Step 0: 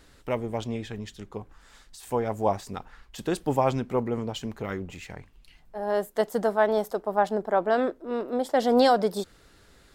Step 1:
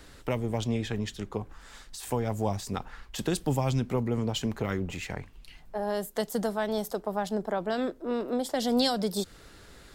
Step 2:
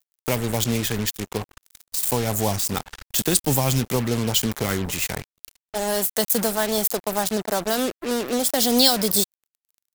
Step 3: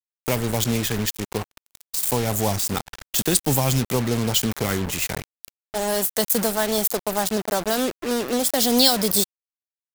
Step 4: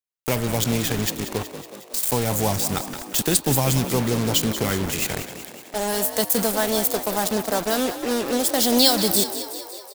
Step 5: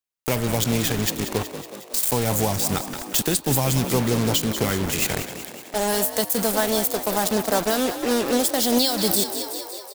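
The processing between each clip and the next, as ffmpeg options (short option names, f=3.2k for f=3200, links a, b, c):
-filter_complex "[0:a]acrossover=split=200|3000[a][b][c];[b]acompressor=threshold=-34dB:ratio=6[d];[a][d][c]amix=inputs=3:normalize=0,volume=5dB"
-af "acrusher=bits=5:mix=0:aa=0.5,aemphasis=mode=production:type=75kf,volume=5dB"
-af "acrusher=bits=4:mix=0:aa=0.5"
-filter_complex "[0:a]bandreject=f=308.5:t=h:w=4,bandreject=f=617:t=h:w=4,bandreject=f=925.5:t=h:w=4,bandreject=f=1.234k:t=h:w=4,bandreject=f=1.5425k:t=h:w=4,bandreject=f=1.851k:t=h:w=4,bandreject=f=2.1595k:t=h:w=4,bandreject=f=2.468k:t=h:w=4,bandreject=f=2.7765k:t=h:w=4,bandreject=f=3.085k:t=h:w=4,bandreject=f=3.3935k:t=h:w=4,bandreject=f=3.702k:t=h:w=4,bandreject=f=4.0105k:t=h:w=4,bandreject=f=4.319k:t=h:w=4,bandreject=f=4.6275k:t=h:w=4,asplit=2[a][b];[b]asplit=8[c][d][e][f][g][h][i][j];[c]adelay=185,afreqshift=49,volume=-11.5dB[k];[d]adelay=370,afreqshift=98,volume=-15.4dB[l];[e]adelay=555,afreqshift=147,volume=-19.3dB[m];[f]adelay=740,afreqshift=196,volume=-23.1dB[n];[g]adelay=925,afreqshift=245,volume=-27dB[o];[h]adelay=1110,afreqshift=294,volume=-30.9dB[p];[i]adelay=1295,afreqshift=343,volume=-34.8dB[q];[j]adelay=1480,afreqshift=392,volume=-38.6dB[r];[k][l][m][n][o][p][q][r]amix=inputs=8:normalize=0[s];[a][s]amix=inputs=2:normalize=0"
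-af "alimiter=limit=-10.5dB:level=0:latency=1:release=304,volume=2dB"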